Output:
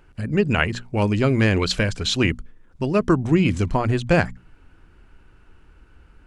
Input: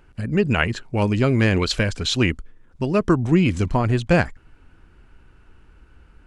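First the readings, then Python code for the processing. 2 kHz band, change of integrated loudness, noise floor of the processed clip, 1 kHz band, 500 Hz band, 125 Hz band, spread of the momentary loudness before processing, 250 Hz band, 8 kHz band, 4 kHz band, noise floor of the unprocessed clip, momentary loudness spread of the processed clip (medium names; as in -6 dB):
0.0 dB, -0.5 dB, -53 dBFS, 0.0 dB, 0.0 dB, -1.0 dB, 5 LU, -0.5 dB, 0.0 dB, 0.0 dB, -53 dBFS, 5 LU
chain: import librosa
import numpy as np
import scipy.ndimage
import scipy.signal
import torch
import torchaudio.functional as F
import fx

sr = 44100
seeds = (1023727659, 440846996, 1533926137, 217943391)

y = fx.hum_notches(x, sr, base_hz=60, count=4)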